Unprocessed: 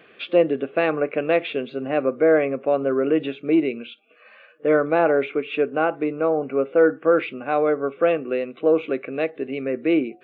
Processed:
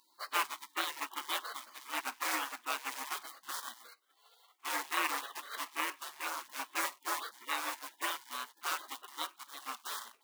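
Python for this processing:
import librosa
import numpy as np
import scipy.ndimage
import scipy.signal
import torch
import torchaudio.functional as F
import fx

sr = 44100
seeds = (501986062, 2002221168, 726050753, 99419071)

p1 = fx.high_shelf(x, sr, hz=2000.0, db=7.0)
p2 = fx.quant_float(p1, sr, bits=2)
p3 = p1 + (p2 * 10.0 ** (-3.5 / 20.0))
p4 = scipy.signal.sosfilt(scipy.signal.butter(4, 610.0, 'highpass', fs=sr, output='sos'), p3)
p5 = fx.spec_gate(p4, sr, threshold_db=-25, keep='weak')
p6 = fx.peak_eq(p5, sr, hz=1100.0, db=11.5, octaves=0.73)
y = p6 * 10.0 ** (-1.5 / 20.0)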